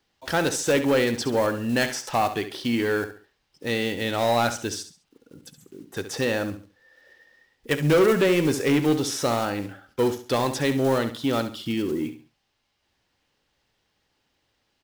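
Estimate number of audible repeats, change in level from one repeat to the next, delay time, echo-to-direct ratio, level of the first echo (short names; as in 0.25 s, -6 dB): 3, -10.0 dB, 68 ms, -10.5 dB, -11.0 dB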